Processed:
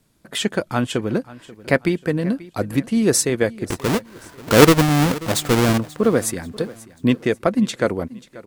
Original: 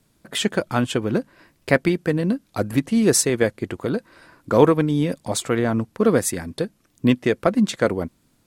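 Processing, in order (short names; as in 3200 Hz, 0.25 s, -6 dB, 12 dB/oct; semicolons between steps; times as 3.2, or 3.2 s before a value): 3.67–5.78 half-waves squared off; feedback echo 0.536 s, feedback 37%, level -19.5 dB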